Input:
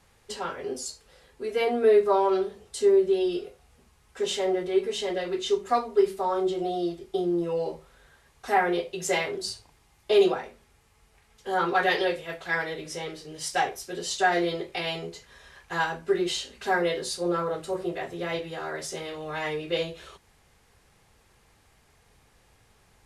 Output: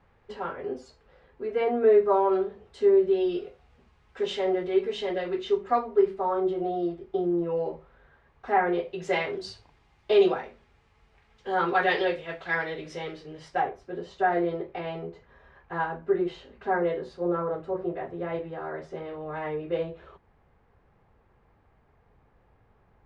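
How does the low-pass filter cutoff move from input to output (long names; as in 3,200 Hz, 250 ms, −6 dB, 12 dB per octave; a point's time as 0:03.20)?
0:02.35 1,800 Hz
0:03.45 3,100 Hz
0:05.02 3,100 Hz
0:05.95 1,800 Hz
0:08.65 1,800 Hz
0:09.34 3,300 Hz
0:13.16 3,300 Hz
0:13.62 1,300 Hz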